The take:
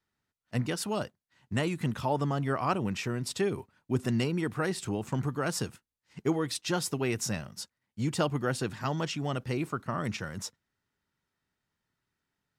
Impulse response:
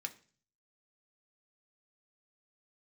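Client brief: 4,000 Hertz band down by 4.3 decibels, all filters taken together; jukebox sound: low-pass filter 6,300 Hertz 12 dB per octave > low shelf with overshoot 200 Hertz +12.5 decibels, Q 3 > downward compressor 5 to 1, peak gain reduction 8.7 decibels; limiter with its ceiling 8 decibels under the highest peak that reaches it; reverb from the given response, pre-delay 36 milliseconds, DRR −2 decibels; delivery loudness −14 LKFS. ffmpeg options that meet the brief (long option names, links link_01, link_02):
-filter_complex "[0:a]equalizer=frequency=4000:width_type=o:gain=-5,alimiter=limit=-23dB:level=0:latency=1,asplit=2[link_01][link_02];[1:a]atrim=start_sample=2205,adelay=36[link_03];[link_02][link_03]afir=irnorm=-1:irlink=0,volume=3.5dB[link_04];[link_01][link_04]amix=inputs=2:normalize=0,lowpass=6300,lowshelf=frequency=200:width_type=q:width=3:gain=12.5,acompressor=threshold=-16dB:ratio=5,volume=8.5dB"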